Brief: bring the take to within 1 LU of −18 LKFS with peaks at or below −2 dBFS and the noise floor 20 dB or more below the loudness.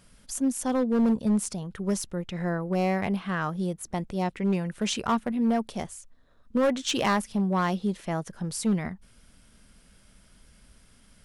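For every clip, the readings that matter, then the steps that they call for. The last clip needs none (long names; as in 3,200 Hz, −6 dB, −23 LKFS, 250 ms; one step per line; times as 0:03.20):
share of clipped samples 1.2%; peaks flattened at −18.5 dBFS; integrated loudness −28.0 LKFS; sample peak −18.5 dBFS; target loudness −18.0 LKFS
→ clipped peaks rebuilt −18.5 dBFS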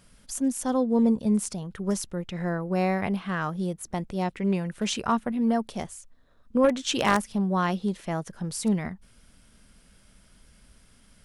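share of clipped samples 0.0%; integrated loudness −27.0 LKFS; sample peak −9.5 dBFS; target loudness −18.0 LKFS
→ level +9 dB
brickwall limiter −2 dBFS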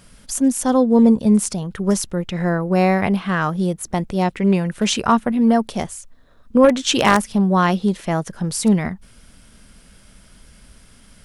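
integrated loudness −18.5 LKFS; sample peak −2.0 dBFS; background noise floor −50 dBFS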